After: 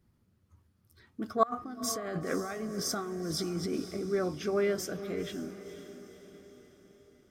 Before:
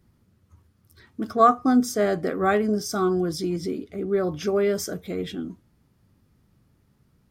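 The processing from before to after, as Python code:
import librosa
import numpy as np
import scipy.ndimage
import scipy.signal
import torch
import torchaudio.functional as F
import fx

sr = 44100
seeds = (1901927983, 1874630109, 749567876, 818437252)

y = fx.over_compress(x, sr, threshold_db=-29.0, ratio=-1.0, at=(1.43, 3.97))
y = fx.dynamic_eq(y, sr, hz=1800.0, q=0.85, threshold_db=-41.0, ratio=4.0, max_db=5)
y = fx.echo_diffused(y, sr, ms=504, feedback_pct=51, wet_db=-12.0)
y = y * librosa.db_to_amplitude(-7.5)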